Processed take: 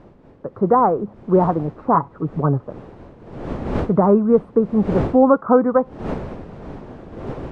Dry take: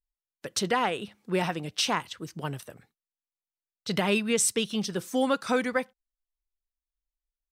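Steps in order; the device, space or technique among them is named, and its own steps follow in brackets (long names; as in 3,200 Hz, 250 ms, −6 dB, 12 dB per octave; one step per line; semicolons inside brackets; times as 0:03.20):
elliptic low-pass filter 1,200 Hz, stop band 60 dB
0:01.94–0:02.60: comb filter 7.1 ms, depth 81%
smartphone video outdoors (wind on the microphone 420 Hz −44 dBFS; automatic gain control gain up to 8 dB; level +5 dB; AAC 96 kbit/s 22,050 Hz)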